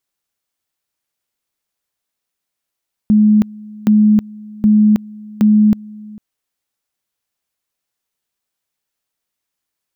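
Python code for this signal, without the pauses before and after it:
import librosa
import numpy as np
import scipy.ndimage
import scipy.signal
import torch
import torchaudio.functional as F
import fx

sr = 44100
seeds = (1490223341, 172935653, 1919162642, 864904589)

y = fx.two_level_tone(sr, hz=212.0, level_db=-6.5, drop_db=23.5, high_s=0.32, low_s=0.45, rounds=4)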